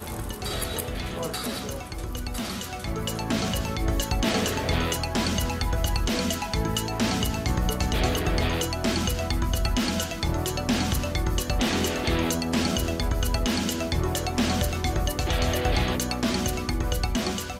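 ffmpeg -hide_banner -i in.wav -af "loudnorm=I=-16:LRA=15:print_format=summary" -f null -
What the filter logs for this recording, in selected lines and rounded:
Input Integrated:    -26.6 LUFS
Input True Peak:     -10.2 dBTP
Input LRA:             1.6 LU
Input Threshold:     -36.6 LUFS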